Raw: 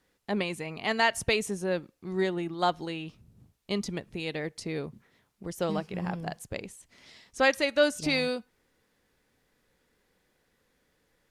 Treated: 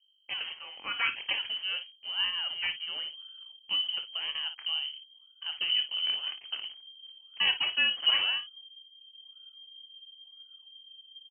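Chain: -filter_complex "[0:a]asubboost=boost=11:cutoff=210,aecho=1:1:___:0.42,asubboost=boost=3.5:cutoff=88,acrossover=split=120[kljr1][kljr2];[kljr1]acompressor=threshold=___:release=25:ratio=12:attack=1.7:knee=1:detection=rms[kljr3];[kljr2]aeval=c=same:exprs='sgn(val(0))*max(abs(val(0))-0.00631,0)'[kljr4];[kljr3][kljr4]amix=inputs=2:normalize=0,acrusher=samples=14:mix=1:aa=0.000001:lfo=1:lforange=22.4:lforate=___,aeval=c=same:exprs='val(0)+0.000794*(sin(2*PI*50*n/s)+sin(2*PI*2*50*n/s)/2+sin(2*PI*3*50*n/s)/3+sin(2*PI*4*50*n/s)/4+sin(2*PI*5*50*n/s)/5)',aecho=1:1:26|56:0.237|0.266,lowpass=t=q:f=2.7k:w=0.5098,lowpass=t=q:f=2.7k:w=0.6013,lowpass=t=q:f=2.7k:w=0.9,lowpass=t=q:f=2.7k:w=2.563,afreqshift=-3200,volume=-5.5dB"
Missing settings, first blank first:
3.4, -41dB, 0.98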